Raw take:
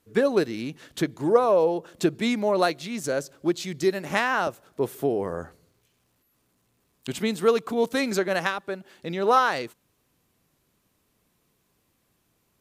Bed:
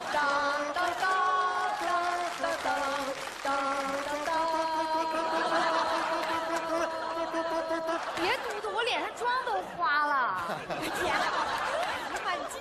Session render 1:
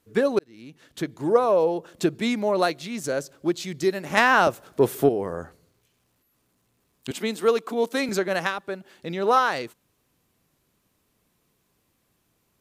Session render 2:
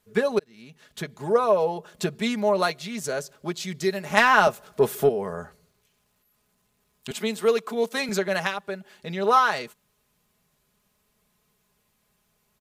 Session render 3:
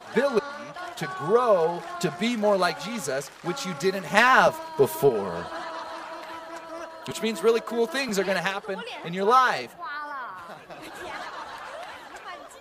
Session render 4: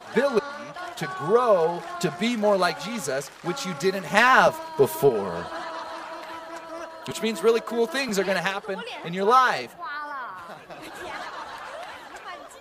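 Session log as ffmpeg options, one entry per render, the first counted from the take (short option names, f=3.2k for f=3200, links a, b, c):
-filter_complex "[0:a]asettb=1/sr,asplit=3[a][b][c];[a]atrim=end=4.174[d];[b]atrim=start=4.17:end=5.09,asetpts=PTS-STARTPTS,afade=t=in:d=0.004:c=qsin,afade=t=out:st=0.916:d=0.004:c=qsin,acontrast=80[e];[c]atrim=start=5.086[f];[d][e]acrossfade=d=0.004:c1=hsin:c2=qsin[g];[g][f]acrossfade=d=0.004:c1=qsin:c2=hsin,asettb=1/sr,asplit=3[h][i][j];[h]atrim=end=7.114[k];[i]atrim=start=7.11:end=8.09,asetpts=PTS-STARTPTS,afade=t=in:d=0.004:c=qsin,afade=t=out:st=0.976:d=0.004:c=qsin,highpass=f=220:w=0.5412,highpass=f=220:w=1.3066[l];[j]atrim=start=8.086[m];[k][l]acrossfade=d=0.004:c1=hsin:c2=qsin[n];[n][m]acrossfade=d=0.004:c1=qsin:c2=hsin,asplit=2[o][p];[o]atrim=end=0.39,asetpts=PTS-STARTPTS,afade=t=out:st=0.386:d=0.004:c=hsin[q];[p]atrim=start=0.39,asetpts=PTS-STARTPTS,afade=t=in:d=0.96[r];[q][r]concat=n=2:v=0:a=1"
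-af "equalizer=f=300:w=2.1:g=-9.5,aecho=1:1:4.8:0.52"
-filter_complex "[1:a]volume=-7.5dB[a];[0:a][a]amix=inputs=2:normalize=0"
-af "volume=1dB,alimiter=limit=-2dB:level=0:latency=1"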